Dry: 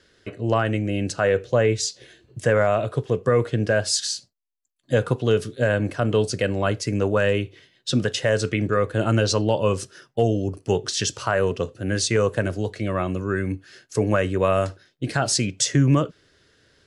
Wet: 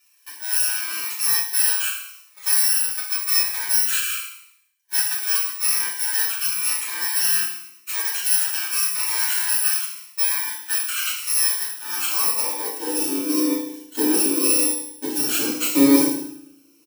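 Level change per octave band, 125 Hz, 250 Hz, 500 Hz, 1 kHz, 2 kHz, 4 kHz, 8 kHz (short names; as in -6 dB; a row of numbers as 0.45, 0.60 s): under -25 dB, +0.5 dB, -11.5 dB, -5.5 dB, 0.0 dB, +4.0 dB, +9.5 dB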